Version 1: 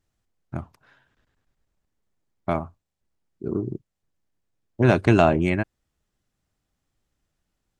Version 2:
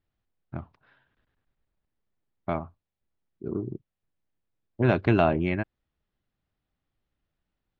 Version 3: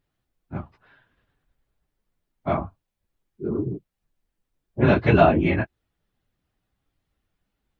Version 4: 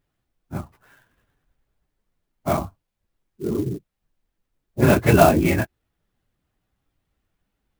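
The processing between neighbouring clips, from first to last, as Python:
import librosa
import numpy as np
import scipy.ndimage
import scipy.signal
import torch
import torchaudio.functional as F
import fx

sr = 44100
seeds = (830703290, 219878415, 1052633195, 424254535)

y1 = scipy.signal.sosfilt(scipy.signal.butter(4, 4100.0, 'lowpass', fs=sr, output='sos'), x)
y1 = y1 * 10.0 ** (-4.5 / 20.0)
y2 = fx.phase_scramble(y1, sr, seeds[0], window_ms=50)
y2 = y2 * 10.0 ** (5.5 / 20.0)
y3 = fx.clock_jitter(y2, sr, seeds[1], jitter_ms=0.033)
y3 = y3 * 10.0 ** (2.0 / 20.0)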